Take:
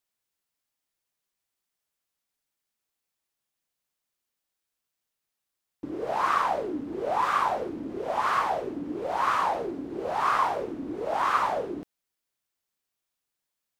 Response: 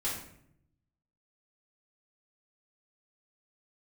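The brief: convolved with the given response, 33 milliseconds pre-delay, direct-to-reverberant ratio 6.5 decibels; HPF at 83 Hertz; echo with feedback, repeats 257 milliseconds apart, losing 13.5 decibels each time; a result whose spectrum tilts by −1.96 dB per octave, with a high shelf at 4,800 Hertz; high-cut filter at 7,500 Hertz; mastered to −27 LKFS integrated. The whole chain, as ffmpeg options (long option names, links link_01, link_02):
-filter_complex "[0:a]highpass=83,lowpass=7500,highshelf=frequency=4800:gain=7.5,aecho=1:1:257|514:0.211|0.0444,asplit=2[link_01][link_02];[1:a]atrim=start_sample=2205,adelay=33[link_03];[link_02][link_03]afir=irnorm=-1:irlink=0,volume=-11dB[link_04];[link_01][link_04]amix=inputs=2:normalize=0,volume=-0.5dB"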